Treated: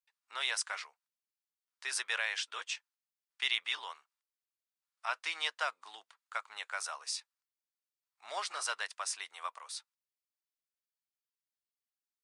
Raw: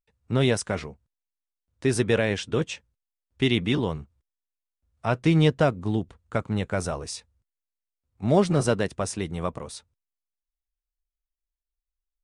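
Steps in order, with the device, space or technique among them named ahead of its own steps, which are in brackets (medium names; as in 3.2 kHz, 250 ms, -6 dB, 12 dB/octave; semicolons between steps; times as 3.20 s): headphones lying on a table (high-pass 1 kHz 24 dB/octave; peaking EQ 4.7 kHz +4 dB 0.38 oct); trim -3.5 dB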